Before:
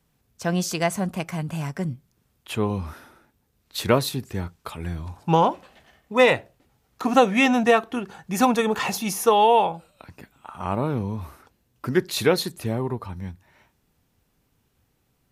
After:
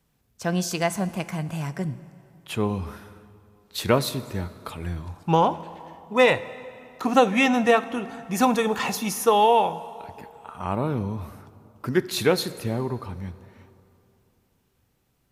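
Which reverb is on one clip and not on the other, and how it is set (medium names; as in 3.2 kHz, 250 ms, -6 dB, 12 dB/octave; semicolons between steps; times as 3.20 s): plate-style reverb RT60 2.8 s, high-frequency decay 0.7×, DRR 15 dB; trim -1 dB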